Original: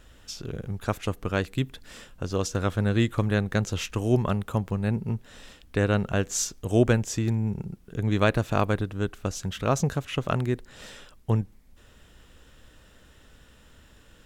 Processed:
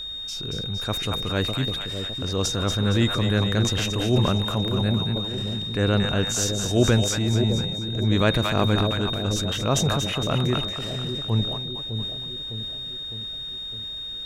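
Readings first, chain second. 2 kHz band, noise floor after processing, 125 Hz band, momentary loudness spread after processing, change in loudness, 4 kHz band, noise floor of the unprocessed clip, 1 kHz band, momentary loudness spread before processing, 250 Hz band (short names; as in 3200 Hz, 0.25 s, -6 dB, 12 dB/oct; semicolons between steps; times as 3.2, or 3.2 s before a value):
+2.5 dB, -34 dBFS, +3.5 dB, 9 LU, +3.5 dB, +15.5 dB, -55 dBFS, +2.0 dB, 13 LU, +3.0 dB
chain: split-band echo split 660 Hz, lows 0.607 s, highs 0.23 s, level -8 dB; whine 3700 Hz -34 dBFS; transient shaper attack -6 dB, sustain +5 dB; gain +3 dB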